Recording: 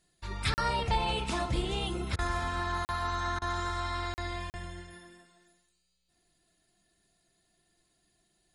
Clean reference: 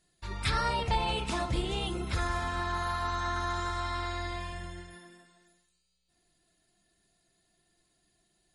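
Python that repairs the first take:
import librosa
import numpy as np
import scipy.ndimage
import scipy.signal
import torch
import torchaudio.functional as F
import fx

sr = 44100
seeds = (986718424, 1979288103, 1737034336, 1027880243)

y = fx.fix_interpolate(x, sr, at_s=(0.54, 2.85, 4.14, 4.5), length_ms=39.0)
y = fx.fix_interpolate(y, sr, at_s=(2.16, 3.39), length_ms=26.0)
y = fx.fix_echo_inverse(y, sr, delay_ms=289, level_db=-23.5)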